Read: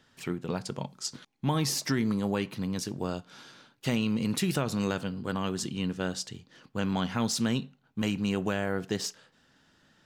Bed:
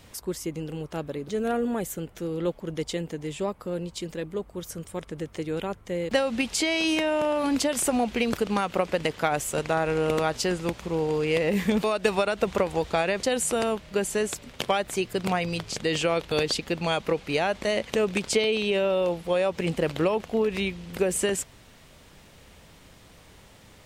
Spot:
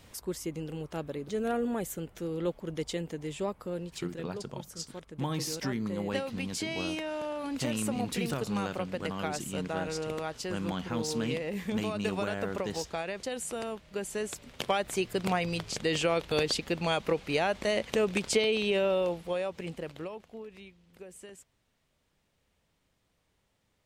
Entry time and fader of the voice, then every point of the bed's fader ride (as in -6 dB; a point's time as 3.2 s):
3.75 s, -5.5 dB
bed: 3.62 s -4 dB
4.45 s -10.5 dB
13.83 s -10.5 dB
14.87 s -3 dB
18.93 s -3 dB
20.71 s -23 dB